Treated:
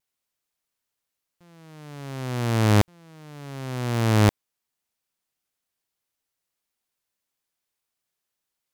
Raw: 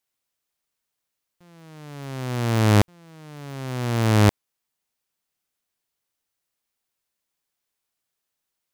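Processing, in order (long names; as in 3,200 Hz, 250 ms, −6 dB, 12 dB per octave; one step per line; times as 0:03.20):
pitch vibrato 0.55 Hz 15 cents
level −1.5 dB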